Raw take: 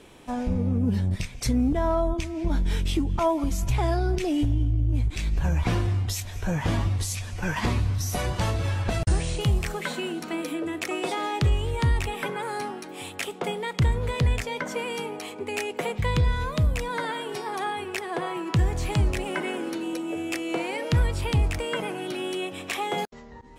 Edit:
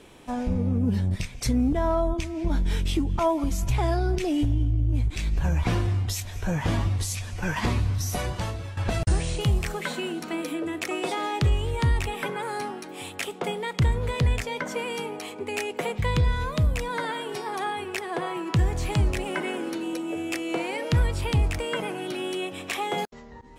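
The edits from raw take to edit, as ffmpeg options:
-filter_complex "[0:a]asplit=2[s0][s1];[s0]atrim=end=8.77,asetpts=PTS-STARTPTS,afade=t=out:st=8.1:d=0.67:silence=0.223872[s2];[s1]atrim=start=8.77,asetpts=PTS-STARTPTS,afade=t=in:d=0.004:c=hsin:silence=0.223872[s3];[s2][s3]concat=n=2:v=0:a=1"

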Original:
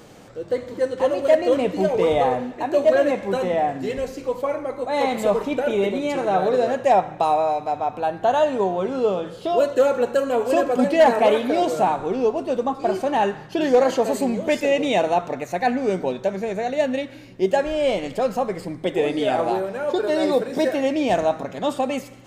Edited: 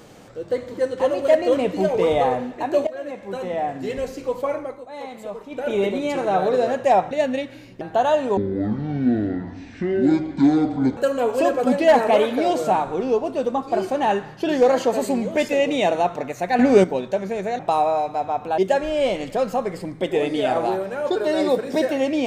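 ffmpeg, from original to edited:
-filter_complex "[0:a]asplit=12[s0][s1][s2][s3][s4][s5][s6][s7][s8][s9][s10][s11];[s0]atrim=end=2.87,asetpts=PTS-STARTPTS,afade=t=out:st=2.866:d=0.004:c=hsin:silence=0.105925[s12];[s1]atrim=start=2.87:end=4.84,asetpts=PTS-STARTPTS,afade=t=in:d=1.17:silence=0.105925,afade=t=out:st=1.7:d=0.27:silence=0.223872[s13];[s2]atrim=start=4.84:end=5.49,asetpts=PTS-STARTPTS,volume=0.224[s14];[s3]atrim=start=5.49:end=7.112,asetpts=PTS-STARTPTS,afade=t=in:d=0.27:silence=0.223872[s15];[s4]atrim=start=16.708:end=17.412[s16];[s5]atrim=start=8.098:end=8.664[s17];[s6]atrim=start=8.66:end=10.09,asetpts=PTS-STARTPTS,asetrate=24255,aresample=44100[s18];[s7]atrim=start=10.086:end=15.712[s19];[s8]atrim=start=15.708:end=15.962,asetpts=PTS-STARTPTS,volume=2.66[s20];[s9]atrim=start=15.958:end=16.712[s21];[s10]atrim=start=7.108:end=8.102[s22];[s11]atrim=start=17.408[s23];[s12][s13][s14][s15]concat=n=4:v=0:a=1[s24];[s24][s16]acrossfade=d=0.004:c1=hsin:c2=hsin[s25];[s25][s17]acrossfade=d=0.004:c1=hsin:c2=hsin[s26];[s26][s18]acrossfade=d=0.004:c1=hsin:c2=hsin[s27];[s27][s19]acrossfade=d=0.004:c1=hsin:c2=hsin[s28];[s28][s20]acrossfade=d=0.004:c1=hsin:c2=hsin[s29];[s29][s21]acrossfade=d=0.004:c1=hsin:c2=hsin[s30];[s30][s22]acrossfade=d=0.004:c1=hsin:c2=hsin[s31];[s31][s23]acrossfade=d=0.004:c1=hsin:c2=hsin"

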